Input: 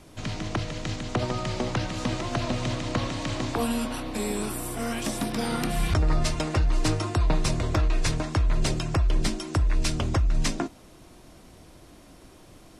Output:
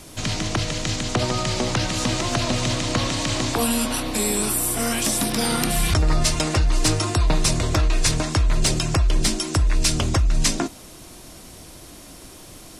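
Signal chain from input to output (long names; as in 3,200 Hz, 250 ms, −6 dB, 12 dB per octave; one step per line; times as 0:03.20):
high-shelf EQ 3,800 Hz +11.5 dB
in parallel at 0 dB: brickwall limiter −21 dBFS, peak gain reduction 12.5 dB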